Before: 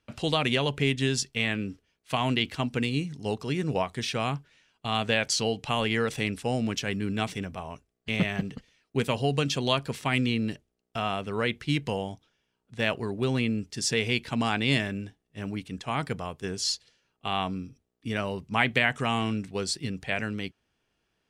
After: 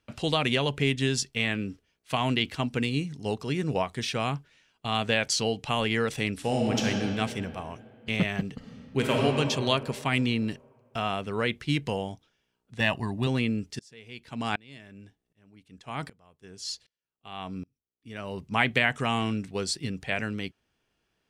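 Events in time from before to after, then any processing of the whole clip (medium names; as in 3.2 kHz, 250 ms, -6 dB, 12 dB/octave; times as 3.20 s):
6.34–6.87 s: reverb throw, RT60 2.7 s, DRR -1 dB
8.55–9.22 s: reverb throw, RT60 2.7 s, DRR -2 dB
12.80–13.27 s: comb 1.1 ms, depth 69%
13.79–18.38 s: sawtooth tremolo in dB swelling 1.3 Hz, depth 30 dB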